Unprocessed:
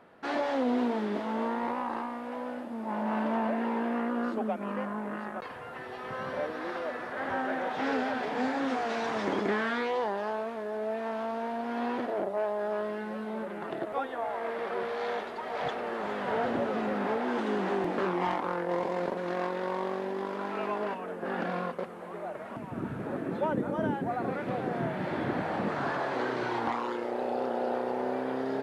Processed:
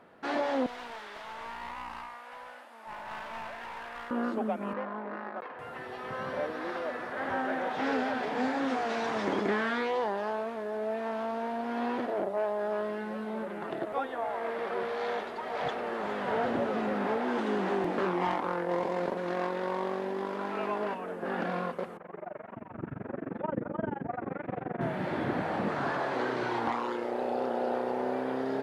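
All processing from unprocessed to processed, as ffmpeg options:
-filter_complex "[0:a]asettb=1/sr,asplit=3[a][b][c];[a]atrim=end=0.664[d];[b]atrim=start=0.66:end=4.11,asetpts=PTS-STARTPTS,afade=t=in:d=0.004:c=qsin,afade=t=out:st=3.446:d=0.004:c=qsin,highpass=1.1k,aeval=exprs='clip(val(0),-1,0.00841)':c=same[e];[c]atrim=start=4.106[f];[d][e]acrossfade=d=0.004:c1=hsin:c2=qsin[g];[g][f]acrossfade=d=0.004:c1=qsin:c2=hsin,asettb=1/sr,asplit=3[h][i][j];[h]atrim=end=4.734[k];[i]atrim=start=4.73:end=5.59,asetpts=PTS-STARTPTS,afade=t=in:d=0.004:c=qsin,afade=t=out:st=0.856:d=0.004:c=qsin,adynamicsmooth=sensitivity=8:basefreq=2.1k,highpass=290,lowpass=3k[l];[j]atrim=start=5.586[m];[k][l]acrossfade=d=0.004:c1=hsin:c2=qsin[n];[n][m]acrossfade=d=0.004:c1=qsin:c2=hsin,asettb=1/sr,asplit=3[o][p][q];[o]atrim=end=21.974[r];[p]atrim=start=21.97:end=24.81,asetpts=PTS-STARTPTS,afade=t=in:d=0.004:c=qsin,afade=t=out:st=2.836:d=0.004:c=qsin,lowpass=f=2.5k:w=0.5412,lowpass=f=2.5k:w=1.3066,tremolo=f=23:d=0.974[s];[q]atrim=start=24.806[t];[r][s]acrossfade=d=0.004:c1=hsin:c2=qsin[u];[u][t]acrossfade=d=0.004:c1=qsin:c2=hsin"

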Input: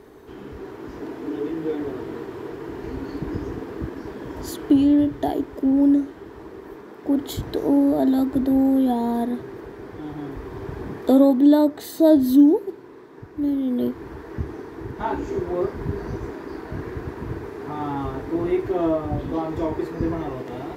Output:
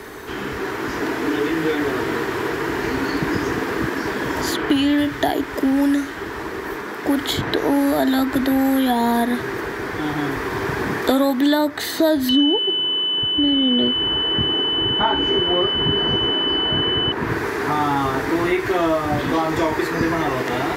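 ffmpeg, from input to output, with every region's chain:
-filter_complex "[0:a]asettb=1/sr,asplit=3[a][b][c];[a]atrim=end=12.294[d];[b]atrim=start=12.29:end=17.12,asetpts=PTS-STARTPTS,afade=t=in:d=0.004:c=qsin,afade=t=out:st=4.826:d=0.004:c=qsin,lowpass=4.6k,aeval=exprs='val(0)+0.0355*sin(2*PI*3000*n/s)':c=same[e];[c]atrim=start=17.116[f];[d][e]acrossfade=d=0.004:c1=hsin:c2=qsin[g];[g][f]acrossfade=d=0.004:c1=qsin:c2=hsin,equalizer=f=1.8k:w=0.61:g=14,acrossover=split=120|970|3900[h][i][j][k];[h]acompressor=threshold=-48dB:ratio=4[l];[i]acompressor=threshold=-26dB:ratio=4[m];[j]acompressor=threshold=-32dB:ratio=4[n];[k]acompressor=threshold=-51dB:ratio=4[o];[l][m][n][o]amix=inputs=4:normalize=0,bass=f=250:g=3,treble=f=4k:g=12,volume=6.5dB"

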